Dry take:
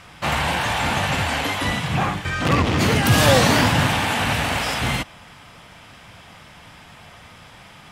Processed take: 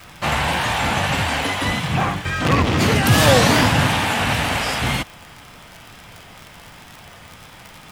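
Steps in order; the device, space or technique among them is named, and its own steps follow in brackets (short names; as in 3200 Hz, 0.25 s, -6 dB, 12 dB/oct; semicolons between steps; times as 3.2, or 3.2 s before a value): vinyl LP (wow and flutter; crackle 72/s -29 dBFS; pink noise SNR 31 dB); gain +1.5 dB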